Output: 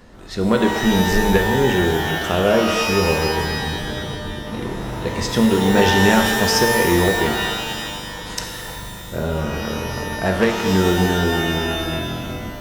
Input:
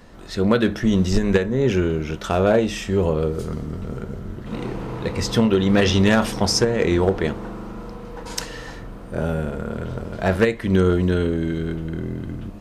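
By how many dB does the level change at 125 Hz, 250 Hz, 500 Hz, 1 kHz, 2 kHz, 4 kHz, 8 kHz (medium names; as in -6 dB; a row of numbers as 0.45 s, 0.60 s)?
0.0 dB, +1.5 dB, +2.0 dB, +8.0 dB, +8.0 dB, +6.5 dB, +5.5 dB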